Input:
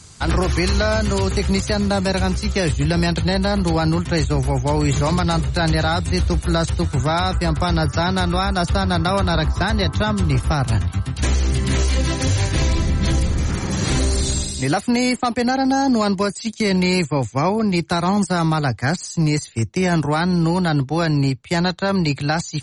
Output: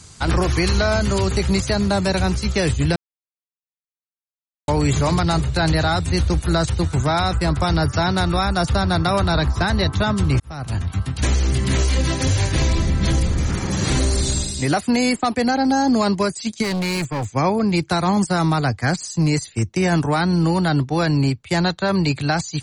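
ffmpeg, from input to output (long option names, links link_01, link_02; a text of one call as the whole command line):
ffmpeg -i in.wav -filter_complex "[0:a]asplit=3[link_01][link_02][link_03];[link_01]afade=type=out:start_time=16.62:duration=0.02[link_04];[link_02]asoftclip=type=hard:threshold=-20.5dB,afade=type=in:start_time=16.62:duration=0.02,afade=type=out:start_time=17.27:duration=0.02[link_05];[link_03]afade=type=in:start_time=17.27:duration=0.02[link_06];[link_04][link_05][link_06]amix=inputs=3:normalize=0,asplit=4[link_07][link_08][link_09][link_10];[link_07]atrim=end=2.96,asetpts=PTS-STARTPTS,afade=type=out:start_time=2.956:duration=0.004:curve=hsin[link_11];[link_08]atrim=start=2.96:end=4.68,asetpts=PTS-STARTPTS,volume=0[link_12];[link_09]atrim=start=4.68:end=10.4,asetpts=PTS-STARTPTS,afade=type=in:duration=0.004:curve=hsin,afade=type=out:start_time=5.716:duration=0.004:curve=hsin[link_13];[link_10]atrim=start=10.4,asetpts=PTS-STARTPTS,afade=type=in:duration=0.61[link_14];[link_11][link_12][link_13][link_14]concat=n=4:v=0:a=1" out.wav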